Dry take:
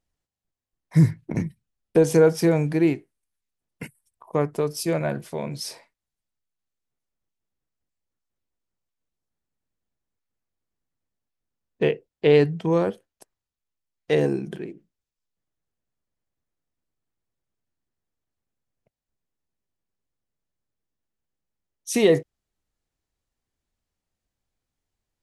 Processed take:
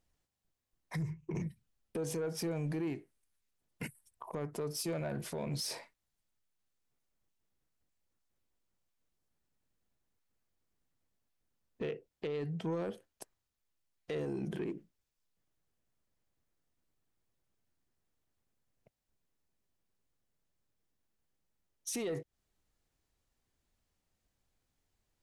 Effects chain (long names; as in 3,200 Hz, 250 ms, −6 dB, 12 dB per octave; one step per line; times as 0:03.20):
0:01.02–0:01.42: EQ curve with evenly spaced ripples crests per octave 0.74, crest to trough 14 dB
downward compressor 6 to 1, threshold −29 dBFS, peak gain reduction 19.5 dB
brickwall limiter −29.5 dBFS, peak gain reduction 11.5 dB
soft clipping −31 dBFS, distortion −20 dB
level +2 dB